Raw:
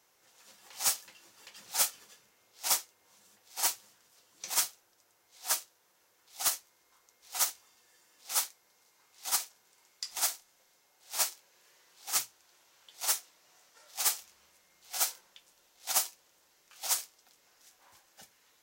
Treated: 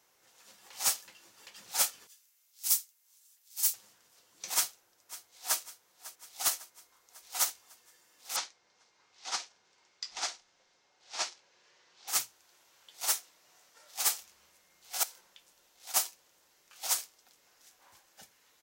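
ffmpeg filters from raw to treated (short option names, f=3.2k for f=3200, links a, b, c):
-filter_complex "[0:a]asettb=1/sr,asplit=3[a][b][c];[a]atrim=end=2.074[d];[b]atrim=start=2.07:end=3.74,asetpts=PTS-STARTPTS,afade=t=in:d=0.004:c=qsin,afade=t=out:st=1.666:d=0.004:c=qsin,aderivative[e];[c]atrim=start=3.736[f];[d][e]acrossfade=d=0.004:c1=hsin:c2=qsin[g];[g][f]acrossfade=d=0.004:c1=qsin:c2=hsin,asplit=2[h][i];[i]afade=t=in:st=4.54:d=0.01,afade=t=out:st=5.6:d=0.01,aecho=0:1:550|1100|1650|2200|2750|3300|3850:0.141254|0.0918149|0.0596797|0.0387918|0.0252147|0.0163895|0.0106532[j];[h][j]amix=inputs=2:normalize=0,asettb=1/sr,asplit=3[k][l][m];[k]atrim=end=8.364[n];[l]atrim=start=8.36:end=12.08,asetpts=PTS-STARTPTS,afade=t=in:d=0.004:c=qsin,afade=t=out:st=3.716:d=0.004:c=qsin,lowpass=f=6.1k:w=0.5412,lowpass=f=6.1k:w=1.3066[o];[m]atrim=start=12.076[p];[n][o]acrossfade=d=0.004:c1=hsin:c2=qsin[q];[q][p]acrossfade=d=0.004:c1=qsin:c2=hsin,asettb=1/sr,asplit=3[r][s][t];[r]atrim=end=15.034[u];[s]atrim=start=15.03:end=15.94,asetpts=PTS-STARTPTS,afade=t=in:d=0.004:c=qsin,afade=t=out:st=0.906:d=0.004:c=qsin,acompressor=threshold=-49dB:ratio=2:attack=3.2:release=140:knee=1:detection=peak[v];[t]atrim=start=15.936[w];[u][v]acrossfade=d=0.004:c1=hsin:c2=qsin[x];[x][w]acrossfade=d=0.004:c1=qsin:c2=hsin"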